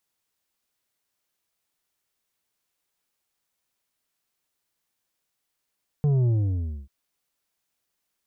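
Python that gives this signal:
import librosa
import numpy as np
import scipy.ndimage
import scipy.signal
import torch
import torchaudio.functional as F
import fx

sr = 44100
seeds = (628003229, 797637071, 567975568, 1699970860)

y = fx.sub_drop(sr, level_db=-19.0, start_hz=150.0, length_s=0.84, drive_db=7, fade_s=0.61, end_hz=65.0)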